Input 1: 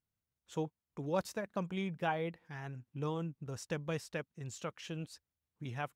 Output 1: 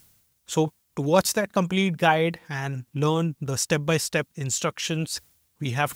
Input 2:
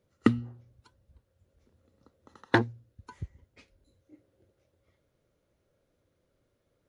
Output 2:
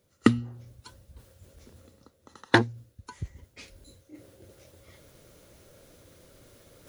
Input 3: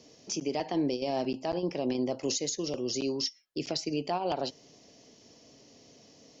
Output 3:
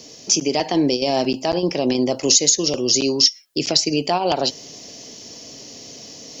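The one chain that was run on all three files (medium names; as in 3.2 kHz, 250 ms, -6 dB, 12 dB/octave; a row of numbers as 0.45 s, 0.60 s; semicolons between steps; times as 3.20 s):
treble shelf 3.8 kHz +11 dB; reverse; upward compressor, threshold -43 dBFS; reverse; peak normalisation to -2 dBFS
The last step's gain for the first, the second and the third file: +14.0 dB, +2.5 dB, +10.5 dB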